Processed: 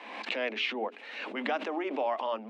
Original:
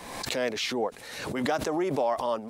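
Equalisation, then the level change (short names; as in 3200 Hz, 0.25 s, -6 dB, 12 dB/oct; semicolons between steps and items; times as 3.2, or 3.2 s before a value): rippled Chebyshev high-pass 210 Hz, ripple 3 dB; synth low-pass 2700 Hz, resonance Q 3.2; notches 60/120/180/240/300/360/420 Hz; -3.5 dB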